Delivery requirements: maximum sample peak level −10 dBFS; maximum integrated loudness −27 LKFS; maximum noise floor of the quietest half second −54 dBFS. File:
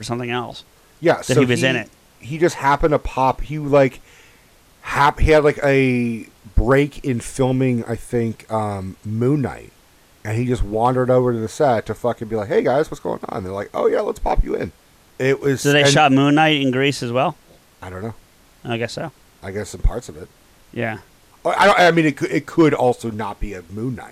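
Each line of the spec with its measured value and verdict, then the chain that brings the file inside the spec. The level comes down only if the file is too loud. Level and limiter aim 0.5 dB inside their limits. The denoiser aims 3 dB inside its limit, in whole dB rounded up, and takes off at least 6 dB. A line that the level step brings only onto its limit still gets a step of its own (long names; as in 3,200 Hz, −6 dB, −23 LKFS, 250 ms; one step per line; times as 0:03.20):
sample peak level −3.5 dBFS: out of spec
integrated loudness −18.5 LKFS: out of spec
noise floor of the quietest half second −52 dBFS: out of spec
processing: level −9 dB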